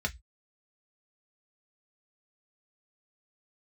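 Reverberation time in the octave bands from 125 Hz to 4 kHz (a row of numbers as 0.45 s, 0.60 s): 0.30 s, 0.15 s, 0.10 s, 0.15 s, 0.15 s, 0.20 s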